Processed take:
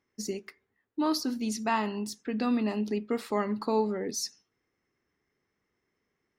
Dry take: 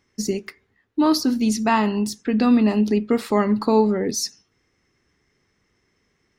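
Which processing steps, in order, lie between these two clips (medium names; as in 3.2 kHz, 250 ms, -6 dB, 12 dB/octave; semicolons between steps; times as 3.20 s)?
bass shelf 170 Hz -10 dB; tape noise reduction on one side only decoder only; trim -8 dB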